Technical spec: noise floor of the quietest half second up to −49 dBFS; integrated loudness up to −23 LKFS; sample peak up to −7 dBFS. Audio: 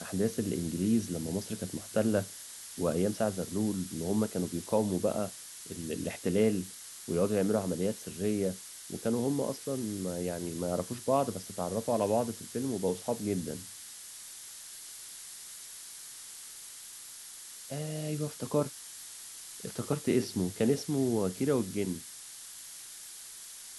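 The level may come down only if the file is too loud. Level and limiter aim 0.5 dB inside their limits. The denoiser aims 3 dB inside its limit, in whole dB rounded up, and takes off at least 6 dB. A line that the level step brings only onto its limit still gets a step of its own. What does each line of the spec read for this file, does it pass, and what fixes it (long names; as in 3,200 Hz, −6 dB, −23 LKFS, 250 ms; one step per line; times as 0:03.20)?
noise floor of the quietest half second −47 dBFS: out of spec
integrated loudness −33.5 LKFS: in spec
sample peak −15.0 dBFS: in spec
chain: broadband denoise 6 dB, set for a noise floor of −47 dBFS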